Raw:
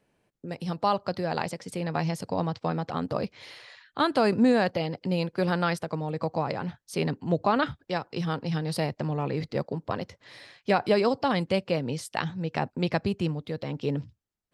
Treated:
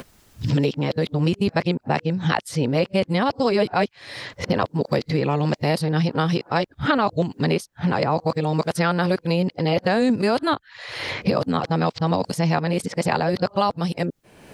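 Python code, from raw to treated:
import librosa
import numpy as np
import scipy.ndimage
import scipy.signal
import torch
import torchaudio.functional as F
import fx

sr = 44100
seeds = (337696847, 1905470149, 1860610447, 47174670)

y = np.flip(x).copy()
y = fx.band_squash(y, sr, depth_pct=100)
y = y * 10.0 ** (5.5 / 20.0)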